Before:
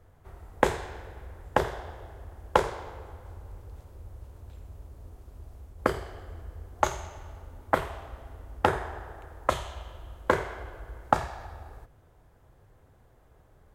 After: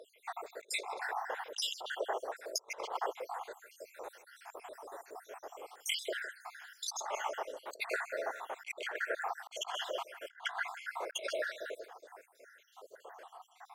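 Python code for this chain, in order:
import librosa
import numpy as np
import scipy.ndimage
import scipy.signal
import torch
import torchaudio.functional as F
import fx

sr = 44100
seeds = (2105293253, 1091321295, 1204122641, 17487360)

y = fx.spec_dropout(x, sr, seeds[0], share_pct=72)
y = scipy.signal.sosfilt(scipy.signal.cheby2(4, 50, 180.0, 'highpass', fs=sr, output='sos'), y)
y = fx.high_shelf(y, sr, hz=9500.0, db=-10.5)
y = y + 10.0 ** (-16.5 / 20.0) * np.pad(y, (int(159 * sr / 1000.0), 0))[:len(y)]
y = fx.over_compress(y, sr, threshold_db=-51.0, ratio=-0.5)
y = y * 10.0 ** (11.5 / 20.0)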